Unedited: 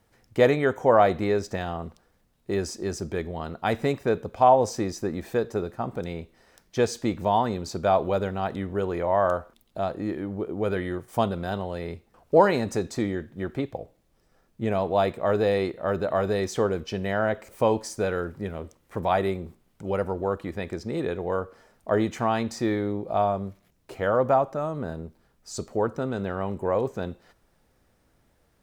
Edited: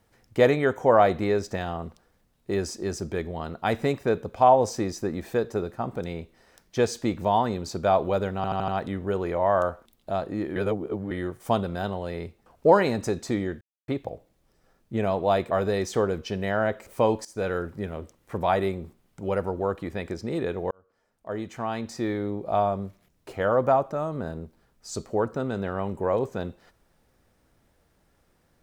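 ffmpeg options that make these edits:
ffmpeg -i in.wav -filter_complex "[0:a]asplit=12[link_01][link_02][link_03][link_04][link_05][link_06][link_07][link_08][link_09][link_10][link_11][link_12];[link_01]atrim=end=8.442[link_13];[link_02]atrim=start=8.358:end=8.442[link_14];[link_03]atrim=start=8.358:end=8.442[link_15];[link_04]atrim=start=8.358:end=8.442[link_16];[link_05]atrim=start=8.358:end=10.242[link_17];[link_06]atrim=start=10.238:end=10.792,asetpts=PTS-STARTPTS,areverse[link_18];[link_07]atrim=start=10.788:end=13.29,asetpts=PTS-STARTPTS,afade=type=out:start_time=2.498:duration=0.004:curve=hsin[link_19];[link_08]atrim=start=13.29:end=13.56,asetpts=PTS-STARTPTS,volume=0[link_20];[link_09]atrim=start=13.56:end=15.192,asetpts=PTS-STARTPTS,afade=type=in:duration=0.004:curve=hsin[link_21];[link_10]atrim=start=16.128:end=17.87,asetpts=PTS-STARTPTS,afade=type=out:start_time=1.738:duration=0.004:curve=hsin:silence=0.133352[link_22];[link_11]atrim=start=17.87:end=21.33,asetpts=PTS-STARTPTS,afade=type=in:duration=0.32:curve=qsin:silence=0.133352,afade=type=out:start_time=3.456:duration=0.004:curve=hsin[link_23];[link_12]atrim=start=21.33,asetpts=PTS-STARTPTS,afade=type=in:duration=1.86[link_24];[link_13][link_14]acrossfade=duration=0.004:curve1=hsin:curve2=hsin[link_25];[link_25][link_15]acrossfade=duration=0.004:curve1=hsin:curve2=hsin[link_26];[link_26][link_16]acrossfade=duration=0.004:curve1=hsin:curve2=hsin[link_27];[link_27][link_17]acrossfade=duration=0.004:curve1=hsin:curve2=hsin[link_28];[link_28][link_18]acrossfade=duration=0.004:curve1=hsin:curve2=hsin[link_29];[link_19][link_20][link_21]concat=n=3:v=0:a=1[link_30];[link_29][link_30]acrossfade=duration=0.004:curve1=hsin:curve2=hsin[link_31];[link_22][link_23][link_24]concat=n=3:v=0:a=1[link_32];[link_31][link_32]acrossfade=duration=0.004:curve1=hsin:curve2=hsin" out.wav

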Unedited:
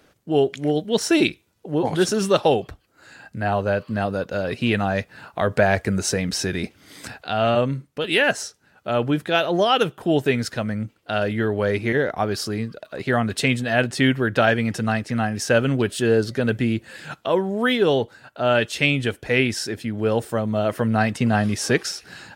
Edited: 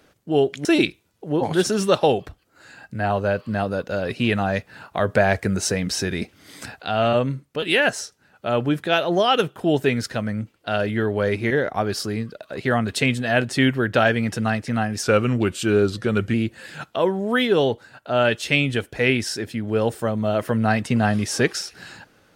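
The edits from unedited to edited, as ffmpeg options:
ffmpeg -i in.wav -filter_complex "[0:a]asplit=4[link_01][link_02][link_03][link_04];[link_01]atrim=end=0.652[link_05];[link_02]atrim=start=1.068:end=15.454[link_06];[link_03]atrim=start=15.45:end=16.64,asetpts=PTS-STARTPTS,asetrate=40131,aresample=44100,atrim=end_sample=57669,asetpts=PTS-STARTPTS[link_07];[link_04]atrim=start=16.636[link_08];[link_05][link_06]acrossfade=duration=0.004:curve1=hsin:curve2=hsin[link_09];[link_09][link_07]acrossfade=duration=0.004:curve1=hsin:curve2=hsin[link_10];[link_10][link_08]acrossfade=duration=0.004:curve1=hsin:curve2=hsin" out.wav

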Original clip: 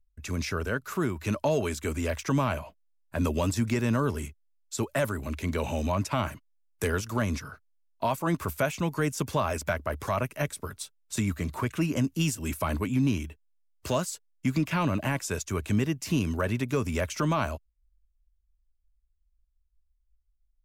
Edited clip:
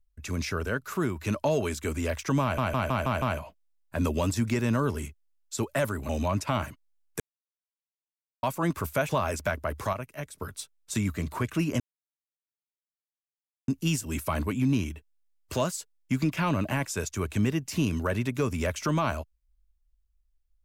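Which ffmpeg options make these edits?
ffmpeg -i in.wav -filter_complex "[0:a]asplit=13[link_01][link_02][link_03][link_04][link_05][link_06][link_07][link_08][link_09][link_10][link_11][link_12][link_13];[link_01]atrim=end=2.582[link_14];[link_02]atrim=start=2.418:end=2.582[link_15];[link_03]atrim=start=2.418:end=2.582[link_16];[link_04]atrim=start=2.418:end=2.582[link_17];[link_05]atrim=start=2.418:end=2.582[link_18];[link_06]atrim=start=2.418:end=5.292[link_19];[link_07]atrim=start=5.728:end=6.84,asetpts=PTS-STARTPTS,afade=type=out:start_time=1.108:duration=0.004:curve=hsin[link_20];[link_08]atrim=start=6.84:end=8.07,asetpts=PTS-STARTPTS,volume=0[link_21];[link_09]atrim=start=8.07:end=8.732,asetpts=PTS-STARTPTS,afade=type=in:duration=0.004:curve=hsin[link_22];[link_10]atrim=start=9.308:end=10.152[link_23];[link_11]atrim=start=10.148:end=10.602,asetpts=PTS-STARTPTS,volume=-7.5dB[link_24];[link_12]atrim=start=10.598:end=12.02,asetpts=PTS-STARTPTS,afade=type=out:start_time=1.418:duration=0.004:curve=hsin,apad=pad_dur=1.88[link_25];[link_13]atrim=start=12.02,asetpts=PTS-STARTPTS,afade=type=in:duration=0.004:curve=hsin[link_26];[link_14][link_15]acrossfade=duration=0.004:curve1=hsin:curve2=hsin[link_27];[link_27][link_16]acrossfade=duration=0.004:curve1=hsin:curve2=hsin[link_28];[link_28][link_17]acrossfade=duration=0.004:curve1=hsin:curve2=hsin[link_29];[link_29][link_18]acrossfade=duration=0.004:curve1=hsin:curve2=hsin[link_30];[link_30][link_19]acrossfade=duration=0.004:curve1=hsin:curve2=hsin[link_31];[link_20][link_21][link_22]concat=n=3:v=0:a=1[link_32];[link_31][link_32]acrossfade=duration=0.004:curve1=hsin:curve2=hsin[link_33];[link_33][link_23]acrossfade=duration=0.004:curve1=hsin:curve2=hsin[link_34];[link_34][link_24]acrossfade=duration=0.004:curve1=hsin:curve2=hsin[link_35];[link_25][link_26]concat=n=2:v=0:a=1[link_36];[link_35][link_36]acrossfade=duration=0.004:curve1=hsin:curve2=hsin" out.wav

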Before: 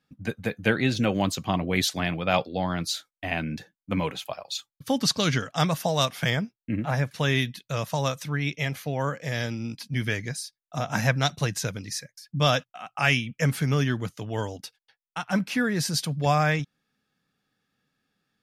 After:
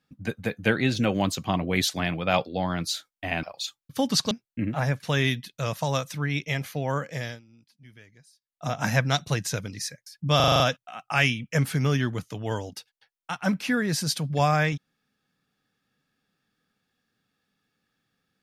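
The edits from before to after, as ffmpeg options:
ffmpeg -i in.wav -filter_complex "[0:a]asplit=11[link_01][link_02][link_03][link_04][link_05][link_06][link_07][link_08][link_09][link_10][link_11];[link_01]atrim=end=3.432[link_12];[link_02]atrim=start=4.338:end=5.222[link_13];[link_03]atrim=start=6.418:end=9.52,asetpts=PTS-STARTPTS,afade=type=out:start_time=2.822:duration=0.28:silence=0.0668344[link_14];[link_04]atrim=start=9.52:end=10.49,asetpts=PTS-STARTPTS,volume=-23.5dB[link_15];[link_05]atrim=start=10.49:end=12.512,asetpts=PTS-STARTPTS,afade=type=in:duration=0.28:silence=0.0668344[link_16];[link_06]atrim=start=12.468:end=12.512[link_17];[link_07]atrim=start=12.468:end=12.512[link_18];[link_08]atrim=start=12.468:end=12.512[link_19];[link_09]atrim=start=12.468:end=12.512[link_20];[link_10]atrim=start=12.468:end=12.512[link_21];[link_11]atrim=start=12.468[link_22];[link_12][link_13]acrossfade=duration=0.004:curve1=hsin:curve2=hsin[link_23];[link_14][link_15][link_16]concat=n=3:v=0:a=1[link_24];[link_23][link_24]acrossfade=duration=0.004:curve1=hsin:curve2=hsin[link_25];[link_25][link_17]acrossfade=duration=0.004:curve1=hsin:curve2=hsin[link_26];[link_26][link_18]acrossfade=duration=0.004:curve1=hsin:curve2=hsin[link_27];[link_27][link_19]acrossfade=duration=0.004:curve1=hsin:curve2=hsin[link_28];[link_28][link_20]acrossfade=duration=0.004:curve1=hsin:curve2=hsin[link_29];[link_29][link_21]acrossfade=duration=0.004:curve1=hsin:curve2=hsin[link_30];[link_30][link_22]acrossfade=duration=0.004:curve1=hsin:curve2=hsin" out.wav

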